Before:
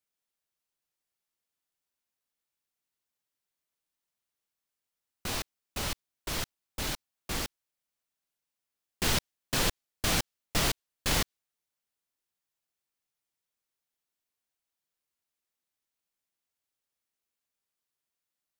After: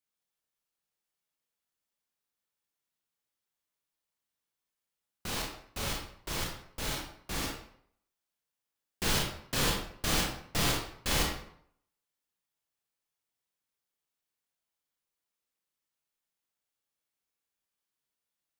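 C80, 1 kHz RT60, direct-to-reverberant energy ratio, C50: 7.0 dB, 0.65 s, -1.5 dB, 3.0 dB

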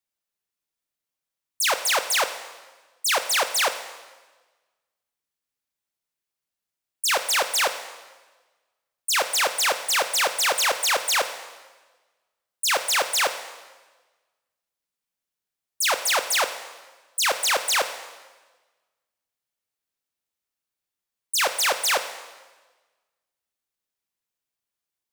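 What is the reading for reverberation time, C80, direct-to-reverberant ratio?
1.3 s, 12.0 dB, 8.5 dB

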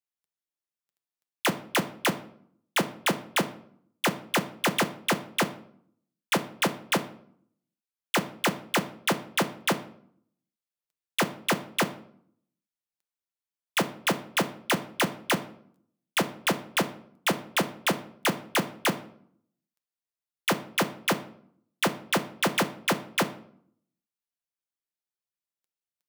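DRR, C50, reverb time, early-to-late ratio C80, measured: 8.0 dB, 15.0 dB, 0.60 s, 18.0 dB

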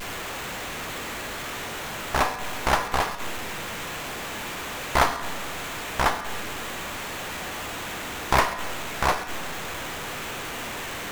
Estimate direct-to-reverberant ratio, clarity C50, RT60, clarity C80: 8.5 dB, 10.0 dB, 1.3 s, 11.5 dB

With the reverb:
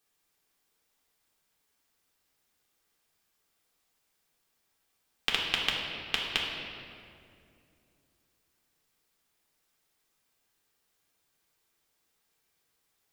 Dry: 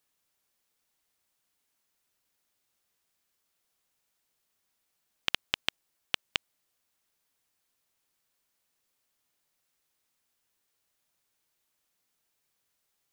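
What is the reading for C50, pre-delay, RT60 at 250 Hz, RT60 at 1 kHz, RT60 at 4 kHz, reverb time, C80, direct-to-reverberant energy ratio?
1.5 dB, 3 ms, 3.3 s, 2.1 s, 1.5 s, 2.5 s, 3.0 dB, -4.0 dB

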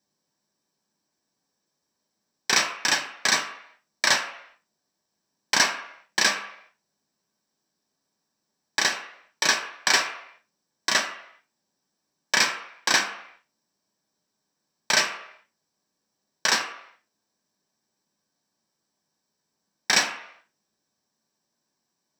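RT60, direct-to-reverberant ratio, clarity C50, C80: not exponential, 1.5 dB, 9.0 dB, 11.0 dB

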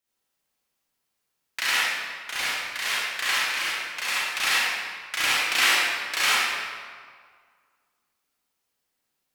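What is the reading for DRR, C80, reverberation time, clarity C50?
-9.5 dB, -2.5 dB, 1.9 s, -6.0 dB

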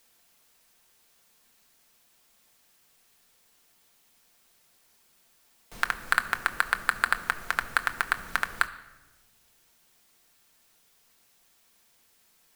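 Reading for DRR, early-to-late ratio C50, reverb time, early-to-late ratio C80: 7.0 dB, 15.0 dB, 1.1 s, 16.5 dB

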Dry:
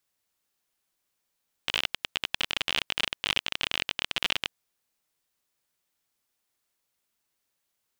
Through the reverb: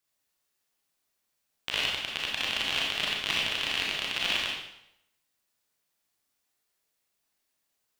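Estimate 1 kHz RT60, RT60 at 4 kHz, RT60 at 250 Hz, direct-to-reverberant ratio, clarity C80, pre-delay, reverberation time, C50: 0.75 s, 0.75 s, 0.80 s, -3.0 dB, 4.0 dB, 24 ms, 0.80 s, 0.5 dB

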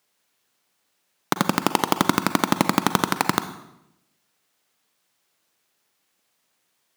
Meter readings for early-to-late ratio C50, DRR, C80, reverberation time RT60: 11.5 dB, 10.5 dB, 14.0 dB, 0.85 s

